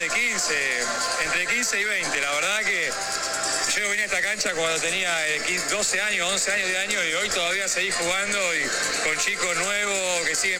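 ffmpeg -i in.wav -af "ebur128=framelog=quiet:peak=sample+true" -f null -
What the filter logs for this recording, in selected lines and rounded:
Integrated loudness:
  I:         -22.2 LUFS
  Threshold: -32.2 LUFS
Loudness range:
  LRA:         0.6 LU
  Threshold: -42.3 LUFS
  LRA low:   -22.6 LUFS
  LRA high:  -22.0 LUFS
Sample peak:
  Peak:       -9.2 dBFS
True peak:
  Peak:       -8.9 dBFS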